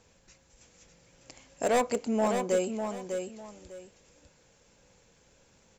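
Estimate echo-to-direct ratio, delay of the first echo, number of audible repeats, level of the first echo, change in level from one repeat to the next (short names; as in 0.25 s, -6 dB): -6.5 dB, 0.6 s, 2, -6.5 dB, -12.5 dB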